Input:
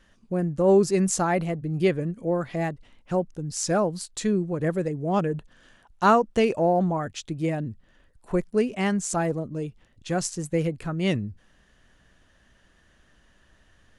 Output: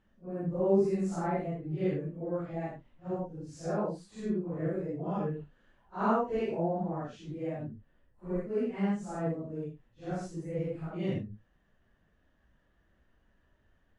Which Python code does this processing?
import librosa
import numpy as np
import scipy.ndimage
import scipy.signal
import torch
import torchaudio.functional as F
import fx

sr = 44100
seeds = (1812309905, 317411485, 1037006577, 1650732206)

y = fx.phase_scramble(x, sr, seeds[0], window_ms=200)
y = fx.lowpass(y, sr, hz=1100.0, slope=6)
y = y * 10.0 ** (-7.5 / 20.0)